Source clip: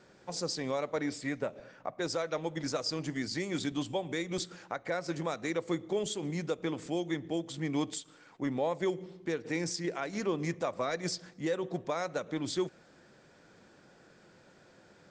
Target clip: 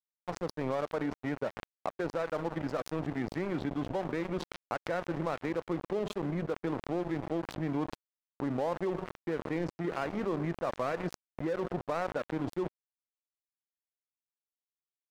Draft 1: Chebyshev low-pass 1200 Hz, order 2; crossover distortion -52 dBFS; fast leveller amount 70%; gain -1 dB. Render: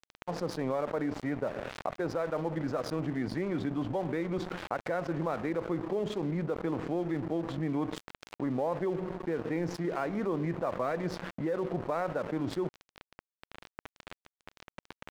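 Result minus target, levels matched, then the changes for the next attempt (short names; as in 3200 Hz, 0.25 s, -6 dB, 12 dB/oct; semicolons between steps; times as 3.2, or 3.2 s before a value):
crossover distortion: distortion -8 dB
change: crossover distortion -43 dBFS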